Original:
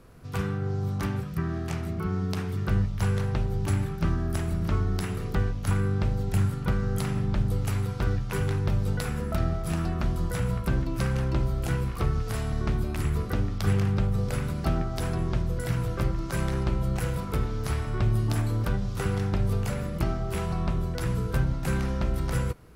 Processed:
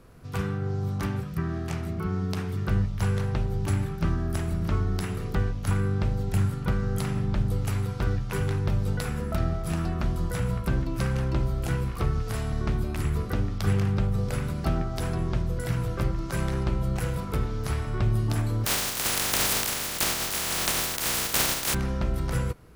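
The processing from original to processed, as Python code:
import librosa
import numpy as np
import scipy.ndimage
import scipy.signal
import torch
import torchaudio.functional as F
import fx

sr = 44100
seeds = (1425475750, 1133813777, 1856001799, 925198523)

y = fx.spec_flatten(x, sr, power=0.13, at=(18.65, 21.73), fade=0.02)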